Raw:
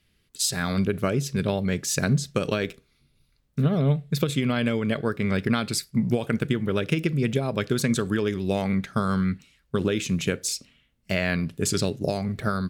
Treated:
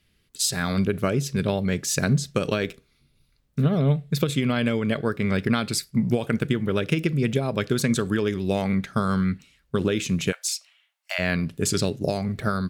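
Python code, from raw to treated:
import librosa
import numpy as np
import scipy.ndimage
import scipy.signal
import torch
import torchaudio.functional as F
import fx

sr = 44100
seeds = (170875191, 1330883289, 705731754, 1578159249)

y = fx.steep_highpass(x, sr, hz=680.0, slope=48, at=(10.31, 11.18), fade=0.02)
y = y * 10.0 ** (1.0 / 20.0)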